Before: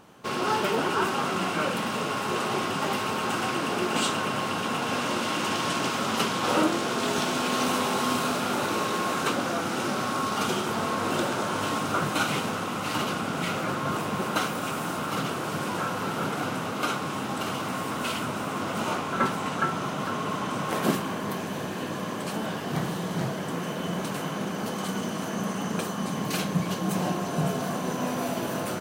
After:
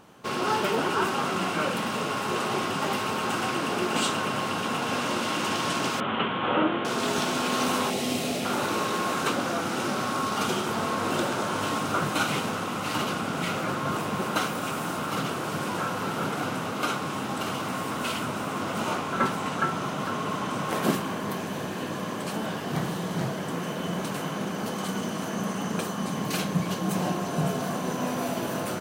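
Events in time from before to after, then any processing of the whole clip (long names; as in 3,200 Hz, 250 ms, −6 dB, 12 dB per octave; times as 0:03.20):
0:06.00–0:06.85: elliptic low-pass filter 3,300 Hz
0:07.90–0:08.45: flat-topped bell 1,200 Hz −12.5 dB 1 octave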